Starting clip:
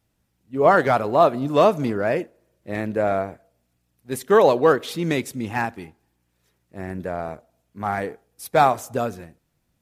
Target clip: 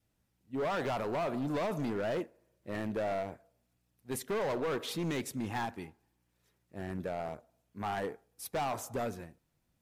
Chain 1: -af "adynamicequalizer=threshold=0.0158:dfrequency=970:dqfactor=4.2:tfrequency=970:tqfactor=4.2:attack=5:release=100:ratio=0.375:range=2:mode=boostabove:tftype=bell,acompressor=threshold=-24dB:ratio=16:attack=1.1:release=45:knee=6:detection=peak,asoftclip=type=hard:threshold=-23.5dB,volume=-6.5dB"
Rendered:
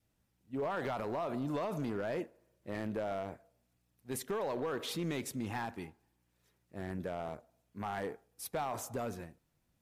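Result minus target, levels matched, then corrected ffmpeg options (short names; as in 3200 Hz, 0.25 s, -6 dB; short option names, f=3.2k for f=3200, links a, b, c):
compressor: peak gain reduction +6 dB
-af "adynamicequalizer=threshold=0.0158:dfrequency=970:dqfactor=4.2:tfrequency=970:tqfactor=4.2:attack=5:release=100:ratio=0.375:range=2:mode=boostabove:tftype=bell,acompressor=threshold=-17.5dB:ratio=16:attack=1.1:release=45:knee=6:detection=peak,asoftclip=type=hard:threshold=-23.5dB,volume=-6.5dB"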